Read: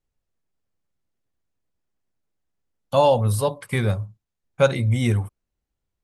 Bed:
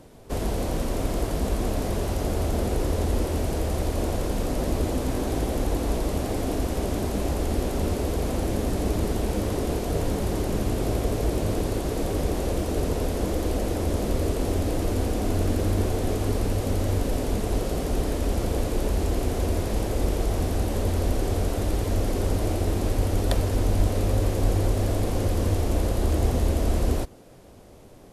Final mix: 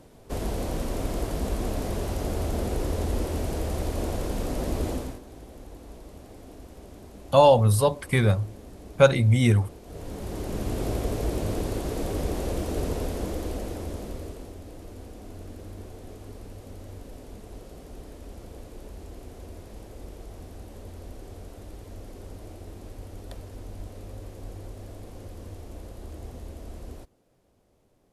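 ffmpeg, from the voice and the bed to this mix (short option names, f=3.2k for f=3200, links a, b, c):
-filter_complex "[0:a]adelay=4400,volume=1dB[a];[1:a]volume=13dB,afade=t=out:st=4.91:d=0.29:silence=0.158489,afade=t=in:st=9.83:d=0.98:silence=0.158489,afade=t=out:st=12.88:d=1.66:silence=0.188365[b];[a][b]amix=inputs=2:normalize=0"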